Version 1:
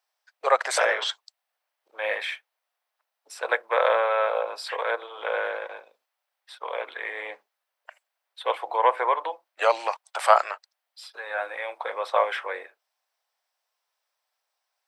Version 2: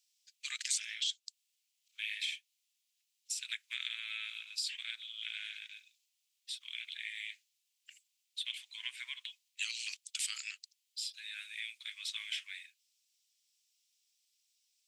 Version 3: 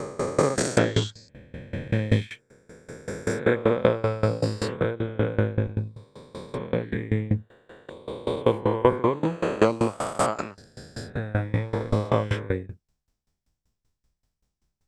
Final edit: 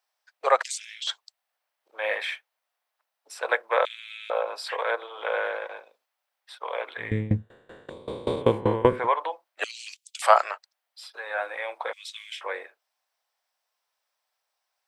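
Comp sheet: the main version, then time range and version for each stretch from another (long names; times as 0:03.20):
1
0:00.63–0:01.07: punch in from 2
0:03.85–0:04.30: punch in from 2
0:07.09–0:08.97: punch in from 3, crossfade 0.24 s
0:09.64–0:10.22: punch in from 2
0:11.93–0:12.41: punch in from 2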